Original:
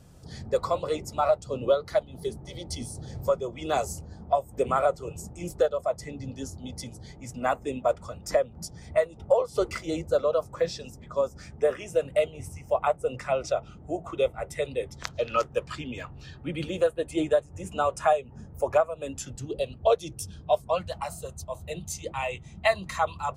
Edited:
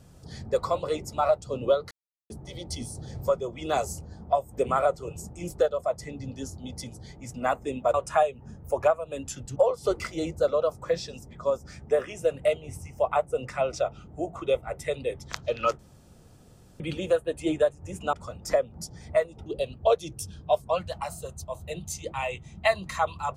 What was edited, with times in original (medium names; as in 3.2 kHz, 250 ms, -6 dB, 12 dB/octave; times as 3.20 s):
1.91–2.30 s: mute
7.94–9.27 s: swap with 17.84–19.46 s
15.50–16.51 s: room tone